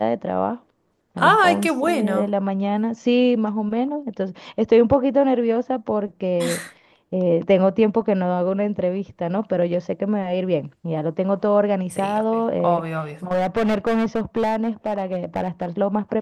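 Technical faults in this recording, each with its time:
13.31–15.65 clipped -16.5 dBFS

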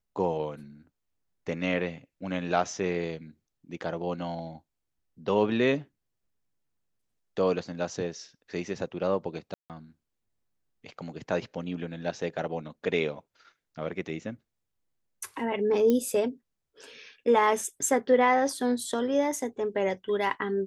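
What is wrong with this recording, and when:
9.54–9.7 gap 0.158 s
15.9 pop -14 dBFS

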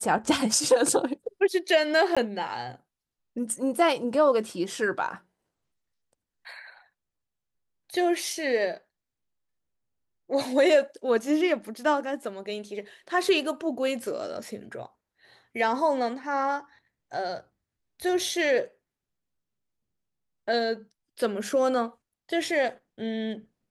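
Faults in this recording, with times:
2.15–2.17 gap 16 ms

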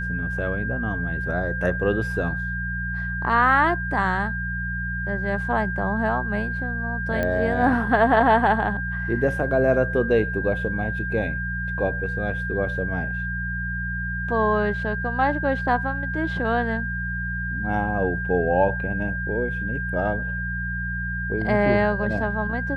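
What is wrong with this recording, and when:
hum 60 Hz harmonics 3 -30 dBFS
tone 1600 Hz -28 dBFS
7.23 pop -13 dBFS

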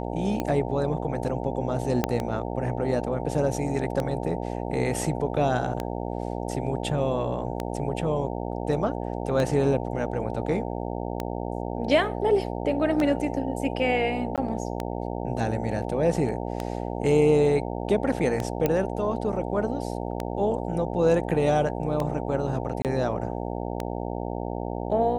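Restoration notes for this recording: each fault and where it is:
buzz 60 Hz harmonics 15 -31 dBFS
tick 33 1/3 rpm -14 dBFS
2.04 pop -8 dBFS
14.36–14.38 gap 17 ms
18.66 pop -10 dBFS
22.82–22.85 gap 28 ms

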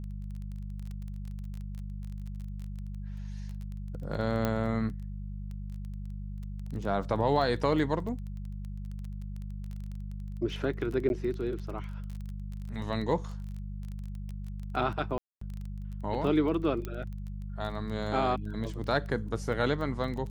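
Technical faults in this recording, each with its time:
crackle 17/s -37 dBFS
hum 50 Hz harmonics 4 -38 dBFS
4.45 pop -15 dBFS
11.09–11.1 gap 11 ms
15.18–15.41 gap 0.234 s
16.85 pop -22 dBFS

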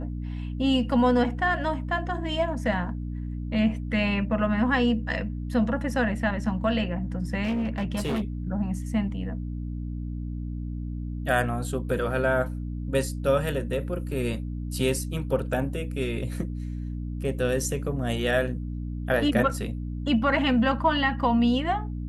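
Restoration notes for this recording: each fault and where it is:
hum 60 Hz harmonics 5 -32 dBFS
7.43–8.22 clipped -23.5 dBFS

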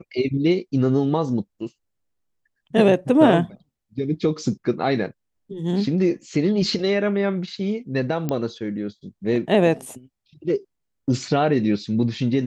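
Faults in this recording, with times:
8.29 pop -12 dBFS

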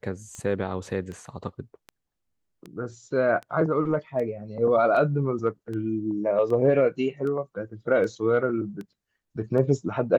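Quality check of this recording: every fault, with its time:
tick 78 rpm -25 dBFS

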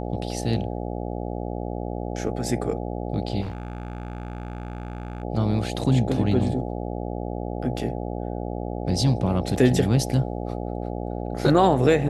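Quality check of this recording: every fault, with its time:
buzz 60 Hz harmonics 14 -30 dBFS
3.41–5.24 clipped -28 dBFS
9.56 gap 2.6 ms

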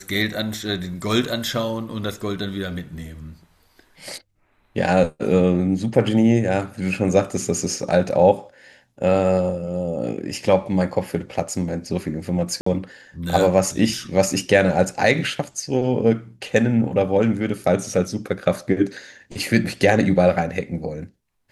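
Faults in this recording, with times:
12.61–12.66 gap 54 ms

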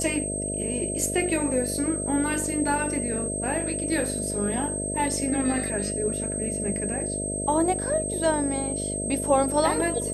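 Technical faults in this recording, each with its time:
buzz 50 Hz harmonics 13 -32 dBFS
tone 8300 Hz -30 dBFS

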